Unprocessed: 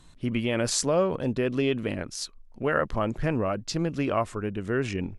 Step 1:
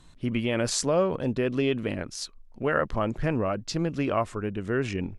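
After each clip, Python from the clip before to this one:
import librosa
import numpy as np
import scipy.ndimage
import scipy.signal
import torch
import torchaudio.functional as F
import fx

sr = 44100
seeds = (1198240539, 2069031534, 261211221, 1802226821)

y = fx.high_shelf(x, sr, hz=10000.0, db=-5.5)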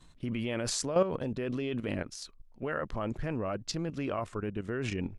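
y = fx.level_steps(x, sr, step_db=11)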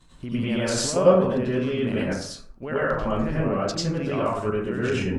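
y = fx.rev_plate(x, sr, seeds[0], rt60_s=0.59, hf_ratio=0.45, predelay_ms=80, drr_db=-7.5)
y = y * 10.0 ** (1.0 / 20.0)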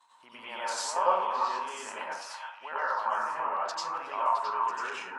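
y = fx.highpass_res(x, sr, hz=920.0, q=8.0)
y = fx.echo_stepped(y, sr, ms=332, hz=1200.0, octaves=1.4, feedback_pct=70, wet_db=-2.0)
y = y * 10.0 ** (-8.5 / 20.0)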